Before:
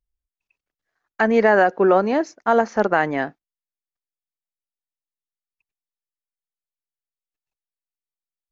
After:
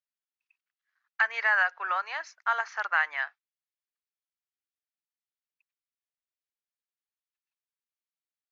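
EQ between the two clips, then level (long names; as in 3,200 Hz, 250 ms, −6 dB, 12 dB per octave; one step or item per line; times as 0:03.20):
high-pass filter 1,200 Hz 24 dB per octave
high-frequency loss of the air 120 metres
0.0 dB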